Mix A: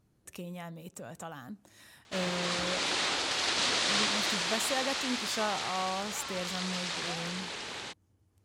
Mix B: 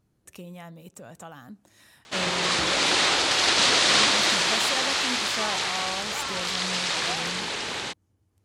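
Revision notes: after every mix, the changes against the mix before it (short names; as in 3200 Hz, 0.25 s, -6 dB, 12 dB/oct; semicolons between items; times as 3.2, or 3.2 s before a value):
background +9.0 dB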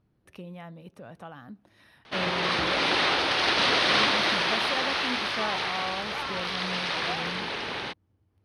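master: add running mean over 6 samples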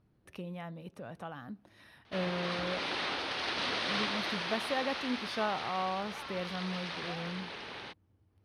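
background -11.0 dB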